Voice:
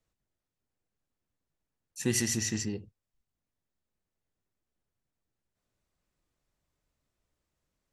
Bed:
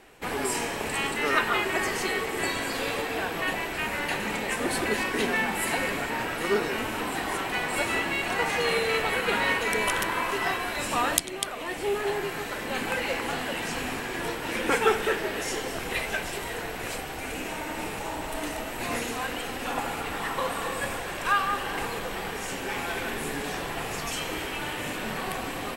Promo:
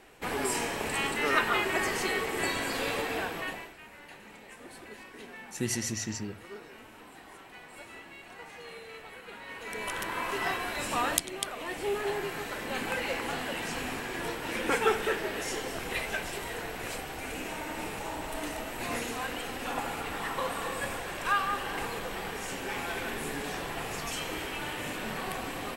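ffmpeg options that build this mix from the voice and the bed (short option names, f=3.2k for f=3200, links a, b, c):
-filter_complex "[0:a]adelay=3550,volume=-3dB[a];[1:a]volume=14.5dB,afade=t=out:st=3.12:d=0.64:silence=0.125893,afade=t=in:st=9.47:d=0.96:silence=0.149624[b];[a][b]amix=inputs=2:normalize=0"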